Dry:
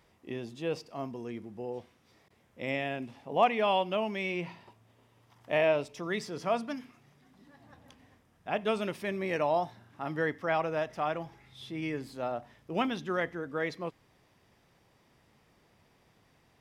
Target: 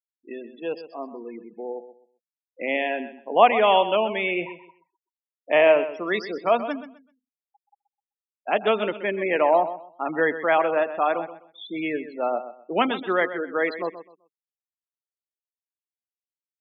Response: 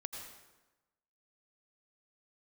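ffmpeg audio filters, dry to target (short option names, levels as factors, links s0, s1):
-filter_complex "[0:a]highpass=170,acrossover=split=220 6300:gain=0.126 1 0.251[s0][s1][s2];[s0][s1][s2]amix=inputs=3:normalize=0,afftfilt=real='re*gte(hypot(re,im),0.0126)':imag='im*gte(hypot(re,im),0.0126)':win_size=1024:overlap=0.75,dynaudnorm=f=240:g=17:m=1.88,asplit=2[s3][s4];[s4]aecho=0:1:128|256|384:0.237|0.0569|0.0137[s5];[s3][s5]amix=inputs=2:normalize=0,volume=1.58"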